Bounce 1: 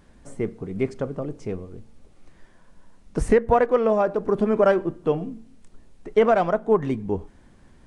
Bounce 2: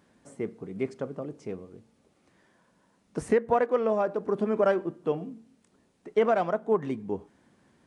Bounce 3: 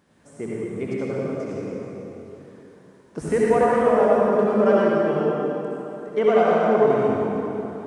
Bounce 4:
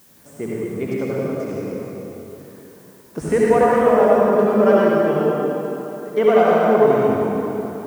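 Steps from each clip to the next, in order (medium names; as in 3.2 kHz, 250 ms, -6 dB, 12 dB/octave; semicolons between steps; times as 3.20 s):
high-pass 150 Hz 12 dB/octave; trim -5.5 dB
reverberation RT60 3.4 s, pre-delay 58 ms, DRR -7 dB
added noise blue -56 dBFS; trim +3.5 dB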